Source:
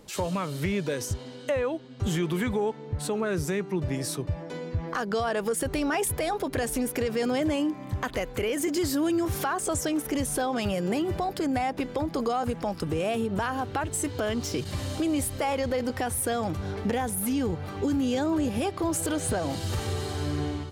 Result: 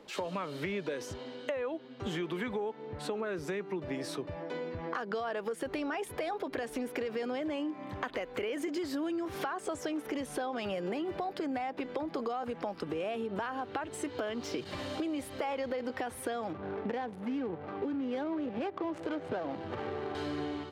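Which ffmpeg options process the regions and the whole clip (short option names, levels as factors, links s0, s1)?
-filter_complex "[0:a]asettb=1/sr,asplit=3[s0][s1][s2];[s0]atrim=end=16.534[s3];[s1]atrim=start=16.53:end=20.15,asetpts=PTS-STARTPTS,afade=t=in:d=0.004:c=qsin,afade=t=out:st=3.616:d=0.004:c=qsin,highpass=f=87:w=0.5412,highpass=f=87:w=1.3066,adynamicsmooth=sensitivity=5:basefreq=640[s4];[s2]atrim=start=20.146[s5];[s3][s4]acrossfade=d=0.004:c1=hsin:c2=qsin[s6];[s6][s5]acrossfade=d=0.004:c1=qsin:c2=hsin,acrossover=split=220 4300:gain=0.141 1 0.158[s7][s8][s9];[s7][s8][s9]amix=inputs=3:normalize=0,acompressor=threshold=0.0251:ratio=6"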